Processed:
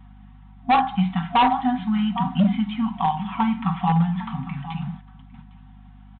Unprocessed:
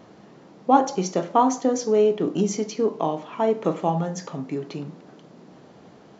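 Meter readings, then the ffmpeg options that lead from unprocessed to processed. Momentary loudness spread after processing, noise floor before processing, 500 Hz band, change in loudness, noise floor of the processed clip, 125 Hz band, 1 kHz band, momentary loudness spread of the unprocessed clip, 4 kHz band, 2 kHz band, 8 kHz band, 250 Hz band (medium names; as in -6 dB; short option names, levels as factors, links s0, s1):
12 LU, -50 dBFS, -16.5 dB, +0.5 dB, -46 dBFS, +7.5 dB, +2.5 dB, 12 LU, +5.0 dB, +8.5 dB, no reading, +3.5 dB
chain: -af "aecho=1:1:806:0.188,agate=range=0.282:threshold=0.01:ratio=16:detection=peak,bandreject=f=50:t=h:w=6,bandreject=f=100:t=h:w=6,bandreject=f=150:t=h:w=6,aecho=1:1:5.3:0.67,afftfilt=real='re*(1-between(b*sr/4096,260,710))':imag='im*(1-between(b*sr/4096,260,710))':win_size=4096:overlap=0.75,aresample=8000,asoftclip=type=hard:threshold=0.141,aresample=44100,aeval=exprs='val(0)+0.00355*(sin(2*PI*50*n/s)+sin(2*PI*2*50*n/s)/2+sin(2*PI*3*50*n/s)/3+sin(2*PI*4*50*n/s)/4+sin(2*PI*5*50*n/s)/5)':c=same,volume=1.58"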